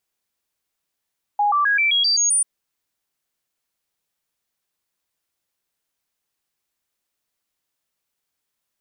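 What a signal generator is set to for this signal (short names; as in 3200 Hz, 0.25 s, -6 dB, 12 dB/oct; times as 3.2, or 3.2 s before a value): stepped sine 825 Hz up, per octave 2, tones 8, 0.13 s, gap 0.00 s -15 dBFS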